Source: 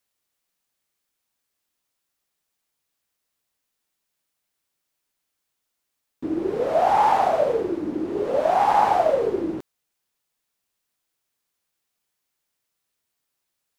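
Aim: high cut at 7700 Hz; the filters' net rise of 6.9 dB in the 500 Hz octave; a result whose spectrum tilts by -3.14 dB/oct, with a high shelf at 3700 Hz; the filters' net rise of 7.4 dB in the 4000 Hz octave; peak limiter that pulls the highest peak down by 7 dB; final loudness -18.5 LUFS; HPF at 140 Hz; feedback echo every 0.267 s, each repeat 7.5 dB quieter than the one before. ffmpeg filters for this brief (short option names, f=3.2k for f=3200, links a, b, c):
-af "highpass=140,lowpass=7.7k,equalizer=f=500:t=o:g=8.5,highshelf=f=3.7k:g=6,equalizer=f=4k:t=o:g=6,alimiter=limit=-9.5dB:level=0:latency=1,aecho=1:1:267|534|801|1068|1335:0.422|0.177|0.0744|0.0312|0.0131"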